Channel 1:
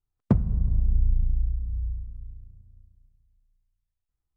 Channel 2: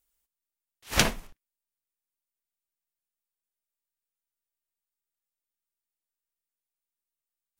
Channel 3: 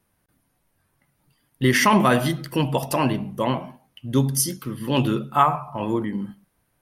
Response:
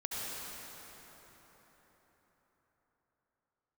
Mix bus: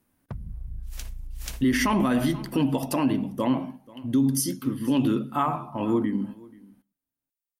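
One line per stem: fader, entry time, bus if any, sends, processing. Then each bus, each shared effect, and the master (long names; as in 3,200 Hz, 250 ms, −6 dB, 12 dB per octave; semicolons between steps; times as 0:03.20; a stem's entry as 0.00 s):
−7.0 dB, 0.00 s, bus A, no send, no echo send, all-pass phaser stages 2, 2.9 Hz, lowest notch 180–1,300 Hz
−5.5 dB, 0.00 s, bus A, no send, echo send −3.5 dB, first-order pre-emphasis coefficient 0.8
−3.5 dB, 0.00 s, no bus, no send, echo send −23.5 dB, parametric band 270 Hz +14.5 dB 0.37 octaves
bus A: 0.0 dB, downward compressor 10 to 1, threshold −31 dBFS, peak gain reduction 10.5 dB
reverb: not used
echo: single-tap delay 484 ms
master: brickwall limiter −14.5 dBFS, peak gain reduction 11 dB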